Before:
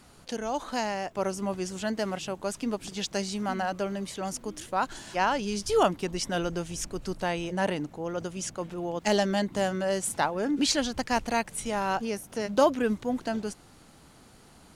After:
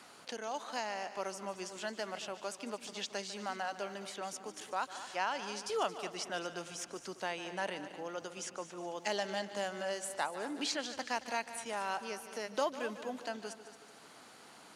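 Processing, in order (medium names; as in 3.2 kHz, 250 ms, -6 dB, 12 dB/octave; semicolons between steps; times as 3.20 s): frequency weighting A; multi-head delay 74 ms, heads second and third, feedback 41%, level -15 dB; three bands compressed up and down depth 40%; trim -7.5 dB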